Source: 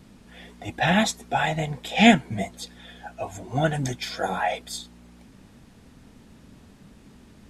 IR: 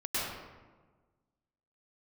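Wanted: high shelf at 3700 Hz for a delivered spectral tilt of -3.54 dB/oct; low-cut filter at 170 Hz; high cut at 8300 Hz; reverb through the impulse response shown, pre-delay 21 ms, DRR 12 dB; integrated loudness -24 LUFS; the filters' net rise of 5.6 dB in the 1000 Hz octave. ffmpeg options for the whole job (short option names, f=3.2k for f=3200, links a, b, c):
-filter_complex "[0:a]highpass=170,lowpass=8.3k,equalizer=f=1k:t=o:g=8,highshelf=f=3.7k:g=7,asplit=2[a][b];[1:a]atrim=start_sample=2205,adelay=21[c];[b][c]afir=irnorm=-1:irlink=0,volume=-19.5dB[d];[a][d]amix=inputs=2:normalize=0,volume=-3dB"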